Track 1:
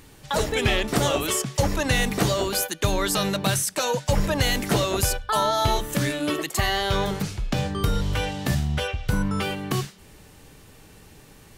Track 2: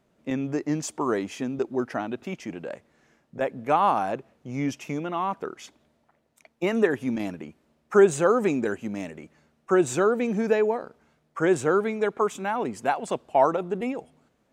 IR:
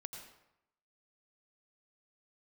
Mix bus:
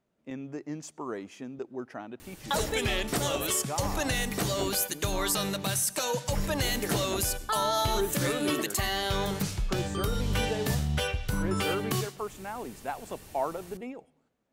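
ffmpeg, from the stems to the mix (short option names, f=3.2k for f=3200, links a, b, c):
-filter_complex "[0:a]highshelf=f=5.7k:g=7,adelay=2200,volume=-3.5dB,asplit=2[a][b];[b]volume=-9dB[c];[1:a]volume=-11dB,asplit=2[d][e];[e]volume=-20dB[f];[2:a]atrim=start_sample=2205[g];[c][f]amix=inputs=2:normalize=0[h];[h][g]afir=irnorm=-1:irlink=0[i];[a][d][i]amix=inputs=3:normalize=0,alimiter=limit=-17dB:level=0:latency=1:release=491"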